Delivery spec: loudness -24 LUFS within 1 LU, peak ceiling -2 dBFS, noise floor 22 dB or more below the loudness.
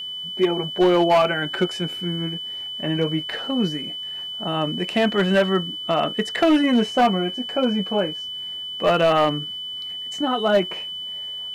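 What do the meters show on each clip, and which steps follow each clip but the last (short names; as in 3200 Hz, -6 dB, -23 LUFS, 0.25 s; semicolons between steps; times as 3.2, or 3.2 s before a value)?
clipped 0.9%; flat tops at -11.5 dBFS; steady tone 3000 Hz; tone level -29 dBFS; loudness -22.0 LUFS; peak -11.5 dBFS; loudness target -24.0 LUFS
-> clip repair -11.5 dBFS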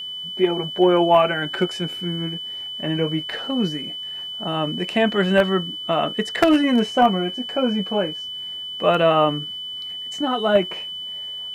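clipped 0.0%; steady tone 3000 Hz; tone level -29 dBFS
-> notch 3000 Hz, Q 30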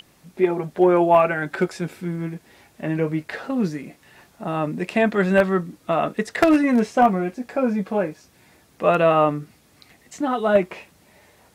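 steady tone none; loudness -21.0 LUFS; peak -2.0 dBFS; loudness target -24.0 LUFS
-> gain -3 dB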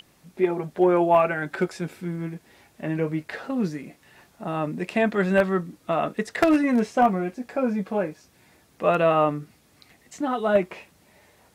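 loudness -24.0 LUFS; peak -5.0 dBFS; noise floor -60 dBFS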